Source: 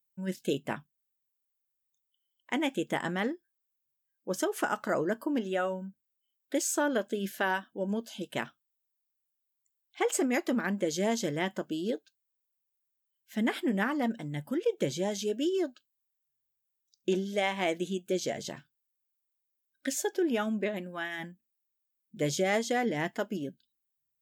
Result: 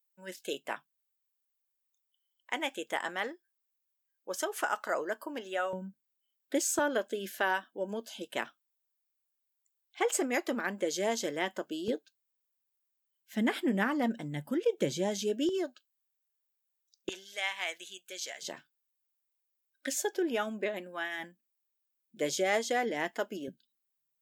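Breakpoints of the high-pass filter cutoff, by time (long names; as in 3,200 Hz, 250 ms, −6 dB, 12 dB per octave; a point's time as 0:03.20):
560 Hz
from 0:05.73 160 Hz
from 0:06.79 340 Hz
from 0:11.88 130 Hz
from 0:15.49 380 Hz
from 0:17.09 1,300 Hz
from 0:18.42 340 Hz
from 0:23.48 160 Hz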